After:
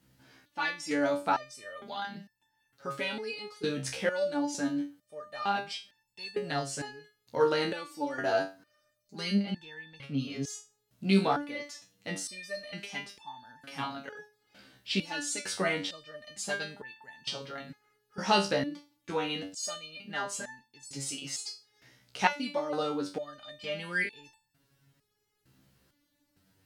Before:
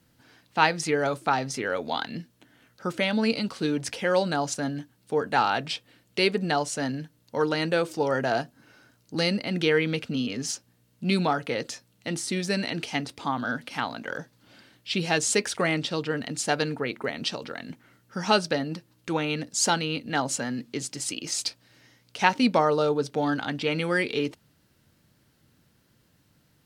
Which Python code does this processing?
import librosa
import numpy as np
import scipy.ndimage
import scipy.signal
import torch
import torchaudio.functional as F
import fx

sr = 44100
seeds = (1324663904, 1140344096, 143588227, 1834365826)

y = fx.high_shelf(x, sr, hz=fx.line((9.34, 8300.0), (10.18, 4100.0)), db=-10.0, at=(9.34, 10.18), fade=0.02)
y = fx.resonator_held(y, sr, hz=2.2, low_hz=66.0, high_hz=880.0)
y = F.gain(torch.from_numpy(y), 5.5).numpy()